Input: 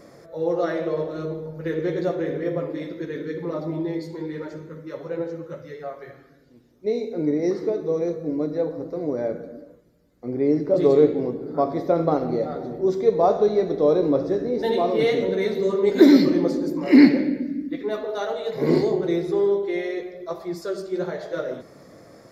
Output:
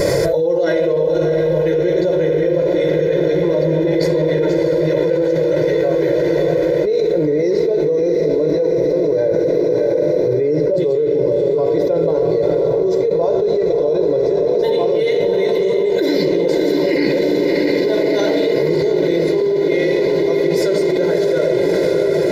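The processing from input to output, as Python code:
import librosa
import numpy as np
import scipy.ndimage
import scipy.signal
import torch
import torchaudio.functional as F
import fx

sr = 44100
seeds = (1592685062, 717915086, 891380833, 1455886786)

y = fx.peak_eq(x, sr, hz=1200.0, db=-14.5, octaves=0.45)
y = y + 0.95 * np.pad(y, (int(2.0 * sr / 1000.0), 0))[:len(y)]
y = fx.echo_diffused(y, sr, ms=640, feedback_pct=75, wet_db=-7)
y = fx.env_flatten(y, sr, amount_pct=100)
y = F.gain(torch.from_numpy(y), -8.5).numpy()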